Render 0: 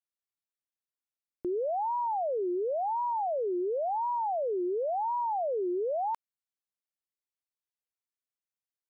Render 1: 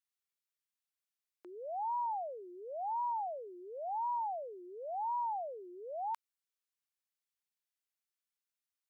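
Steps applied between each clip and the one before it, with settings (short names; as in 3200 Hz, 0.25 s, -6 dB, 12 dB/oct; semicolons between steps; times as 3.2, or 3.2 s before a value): HPF 1200 Hz 12 dB/oct; gain +1 dB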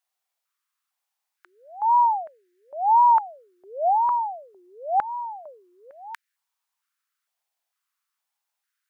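stepped high-pass 2.2 Hz 710–1700 Hz; gain +8 dB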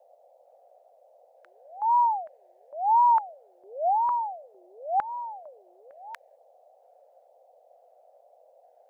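band noise 500–760 Hz -55 dBFS; gain -3.5 dB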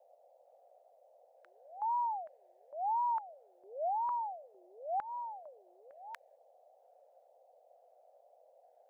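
compressor 3:1, threshold -27 dBFS, peak gain reduction 7.5 dB; gain -6 dB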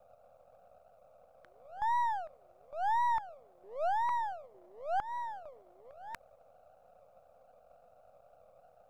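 half-wave gain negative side -7 dB; gain +5 dB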